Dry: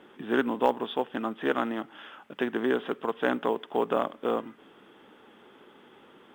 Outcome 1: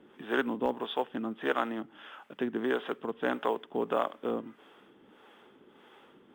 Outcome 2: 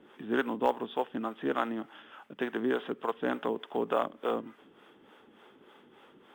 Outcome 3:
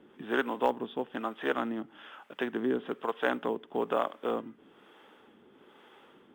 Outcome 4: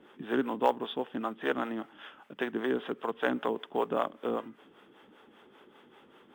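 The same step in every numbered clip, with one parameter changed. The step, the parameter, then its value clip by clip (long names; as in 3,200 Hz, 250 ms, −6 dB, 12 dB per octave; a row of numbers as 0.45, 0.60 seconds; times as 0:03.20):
two-band tremolo in antiphase, speed: 1.6, 3.4, 1.1, 5.1 Hertz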